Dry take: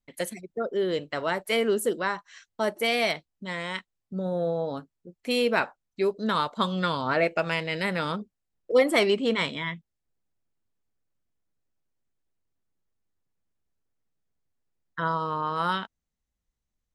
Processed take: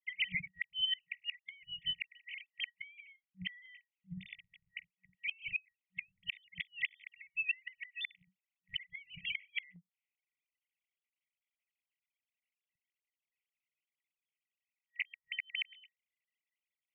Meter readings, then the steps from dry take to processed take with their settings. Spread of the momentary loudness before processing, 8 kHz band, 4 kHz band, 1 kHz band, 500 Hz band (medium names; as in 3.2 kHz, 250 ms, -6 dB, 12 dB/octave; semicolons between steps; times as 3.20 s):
11 LU, under -35 dB, -5.5 dB, under -40 dB, under -40 dB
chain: formants replaced by sine waves; FFT band-reject 190–1900 Hz; low-pass that closes with the level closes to 1.2 kHz, closed at -35.5 dBFS; static phaser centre 1.3 kHz, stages 6; inverted gate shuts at -41 dBFS, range -29 dB; trim +17 dB